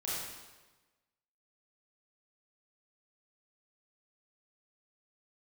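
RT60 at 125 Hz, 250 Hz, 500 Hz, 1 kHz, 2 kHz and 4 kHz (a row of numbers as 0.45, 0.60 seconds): 1.3, 1.2, 1.2, 1.2, 1.1, 1.1 seconds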